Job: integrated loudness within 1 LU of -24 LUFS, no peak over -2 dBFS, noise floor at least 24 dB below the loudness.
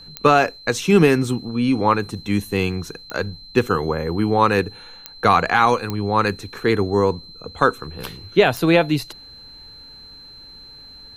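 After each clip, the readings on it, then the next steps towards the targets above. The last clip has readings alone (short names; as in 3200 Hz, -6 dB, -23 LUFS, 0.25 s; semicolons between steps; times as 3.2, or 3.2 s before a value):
clicks 5; steady tone 4100 Hz; tone level -40 dBFS; loudness -19.5 LUFS; peak -2.0 dBFS; loudness target -24.0 LUFS
-> de-click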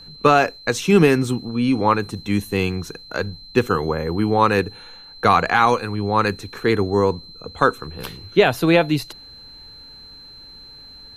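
clicks 0; steady tone 4100 Hz; tone level -40 dBFS
-> notch 4100 Hz, Q 30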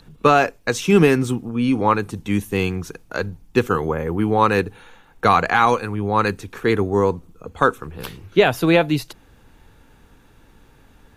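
steady tone none; loudness -19.5 LUFS; peak -2.5 dBFS; loudness target -24.0 LUFS
-> gain -4.5 dB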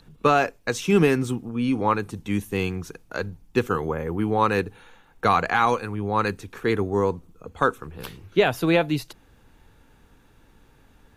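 loudness -24.0 LUFS; peak -6.5 dBFS; noise floor -57 dBFS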